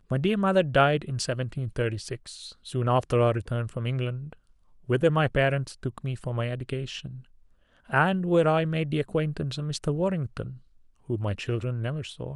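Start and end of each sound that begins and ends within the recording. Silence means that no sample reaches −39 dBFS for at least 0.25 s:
0:04.89–0:07.20
0:07.90–0:10.56

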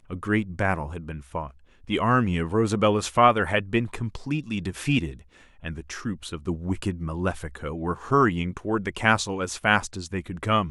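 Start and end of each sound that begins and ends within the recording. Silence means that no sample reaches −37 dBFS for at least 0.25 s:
0:01.88–0:05.19

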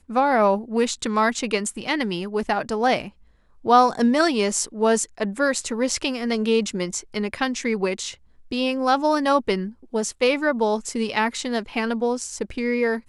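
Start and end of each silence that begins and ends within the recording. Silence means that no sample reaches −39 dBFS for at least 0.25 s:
0:03.09–0:03.64
0:08.14–0:08.51

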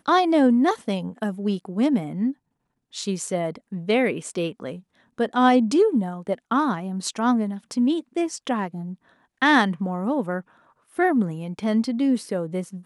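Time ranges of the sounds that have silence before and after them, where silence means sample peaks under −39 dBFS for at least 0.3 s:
0:02.94–0:04.80
0:05.18–0:08.95
0:09.42–0:10.41

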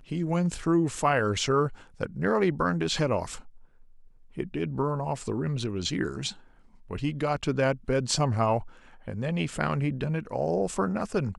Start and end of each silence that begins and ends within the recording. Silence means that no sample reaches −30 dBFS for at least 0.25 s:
0:01.68–0:02.01
0:03.36–0:04.38
0:06.30–0:06.91
0:08.60–0:09.08

